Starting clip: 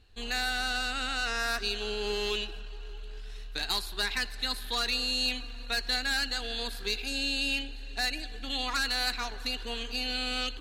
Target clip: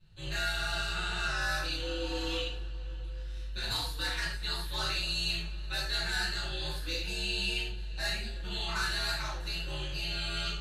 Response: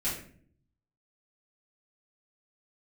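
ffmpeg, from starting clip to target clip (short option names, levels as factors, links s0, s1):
-filter_complex "[0:a]aeval=exprs='val(0)*sin(2*PI*86*n/s)':c=same[s0];[1:a]atrim=start_sample=2205,atrim=end_sample=3969,asetrate=27783,aresample=44100[s1];[s0][s1]afir=irnorm=-1:irlink=0,volume=0.355"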